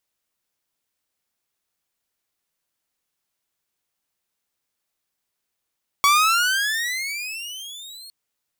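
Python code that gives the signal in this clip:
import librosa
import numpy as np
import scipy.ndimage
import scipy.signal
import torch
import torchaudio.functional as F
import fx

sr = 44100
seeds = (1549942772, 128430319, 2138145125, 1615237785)

y = fx.riser_tone(sr, length_s=2.06, level_db=-10, wave='saw', hz=1120.0, rise_st=23.5, swell_db=-25.5)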